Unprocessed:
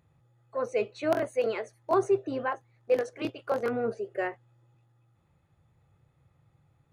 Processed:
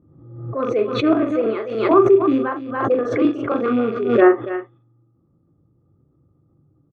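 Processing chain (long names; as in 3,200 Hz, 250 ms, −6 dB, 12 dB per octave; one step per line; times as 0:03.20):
loose part that buzzes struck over −39 dBFS, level −31 dBFS
gain on a spectral selection 0:04.22–0:04.50, 200–3,700 Hz +12 dB
low-pass that shuts in the quiet parts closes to 500 Hz, open at −23 dBFS
single-tap delay 284 ms −14 dB
treble cut that deepens with the level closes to 1,600 Hz, closed at −21.5 dBFS
double-tracking delay 41 ms −6.5 dB
hollow resonant body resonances 290/1,200/3,400 Hz, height 17 dB, ringing for 25 ms
background raised ahead of every attack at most 61 dB per second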